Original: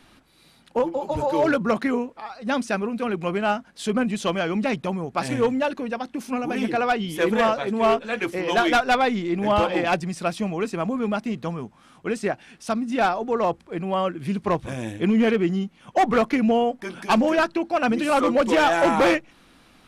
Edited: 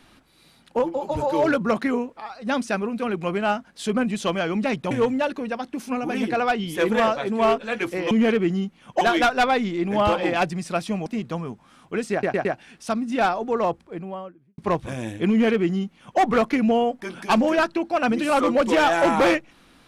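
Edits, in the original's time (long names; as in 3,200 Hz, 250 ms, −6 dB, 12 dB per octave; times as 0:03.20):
0:04.91–0:05.32: remove
0:10.57–0:11.19: remove
0:12.25: stutter 0.11 s, 4 plays
0:13.35–0:14.38: fade out and dull
0:15.10–0:16.00: duplicate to 0:08.52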